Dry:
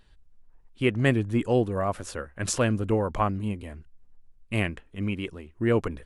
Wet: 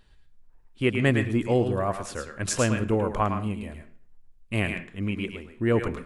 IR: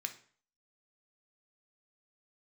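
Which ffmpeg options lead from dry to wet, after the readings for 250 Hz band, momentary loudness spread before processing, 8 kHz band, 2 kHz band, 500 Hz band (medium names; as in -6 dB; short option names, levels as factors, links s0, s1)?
+0.5 dB, 11 LU, +1.5 dB, +2.0 dB, +0.5 dB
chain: -filter_complex "[0:a]asplit=2[s0][s1];[1:a]atrim=start_sample=2205,adelay=108[s2];[s1][s2]afir=irnorm=-1:irlink=0,volume=0.631[s3];[s0][s3]amix=inputs=2:normalize=0"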